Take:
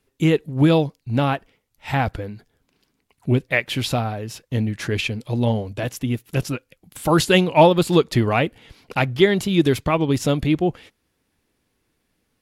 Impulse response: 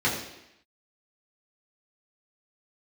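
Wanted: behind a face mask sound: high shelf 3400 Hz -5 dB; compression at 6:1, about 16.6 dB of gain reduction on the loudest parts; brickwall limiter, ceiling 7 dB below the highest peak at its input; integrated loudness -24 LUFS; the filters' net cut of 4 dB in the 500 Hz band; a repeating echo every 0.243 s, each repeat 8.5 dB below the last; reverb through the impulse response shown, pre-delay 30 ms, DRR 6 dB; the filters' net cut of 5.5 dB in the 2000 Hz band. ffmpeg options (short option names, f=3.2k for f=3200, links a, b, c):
-filter_complex "[0:a]equalizer=f=500:t=o:g=-5,equalizer=f=2k:t=o:g=-5,acompressor=threshold=-30dB:ratio=6,alimiter=level_in=1dB:limit=-24dB:level=0:latency=1,volume=-1dB,aecho=1:1:243|486|729|972:0.376|0.143|0.0543|0.0206,asplit=2[a][b];[1:a]atrim=start_sample=2205,adelay=30[c];[b][c]afir=irnorm=-1:irlink=0,volume=-19.5dB[d];[a][d]amix=inputs=2:normalize=0,highshelf=f=3.4k:g=-5,volume=10dB"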